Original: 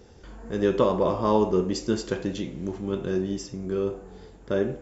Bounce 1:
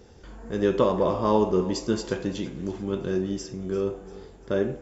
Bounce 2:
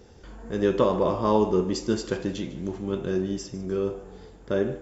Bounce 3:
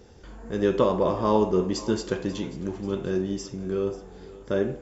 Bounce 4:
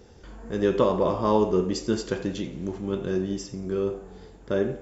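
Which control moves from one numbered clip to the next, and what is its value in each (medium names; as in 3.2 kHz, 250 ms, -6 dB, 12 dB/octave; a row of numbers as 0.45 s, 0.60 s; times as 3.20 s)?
thinning echo, time: 344 ms, 150 ms, 538 ms, 87 ms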